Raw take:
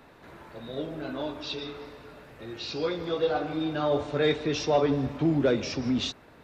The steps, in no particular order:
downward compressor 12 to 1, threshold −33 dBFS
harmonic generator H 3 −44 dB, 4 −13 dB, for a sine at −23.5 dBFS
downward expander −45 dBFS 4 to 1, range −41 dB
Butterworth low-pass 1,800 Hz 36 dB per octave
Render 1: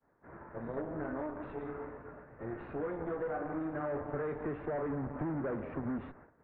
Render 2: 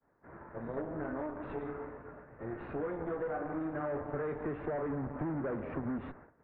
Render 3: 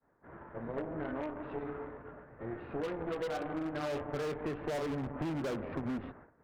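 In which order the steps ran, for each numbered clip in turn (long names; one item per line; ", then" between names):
downward expander, then harmonic generator, then downward compressor, then Butterworth low-pass
harmonic generator, then downward expander, then Butterworth low-pass, then downward compressor
downward expander, then Butterworth low-pass, then harmonic generator, then downward compressor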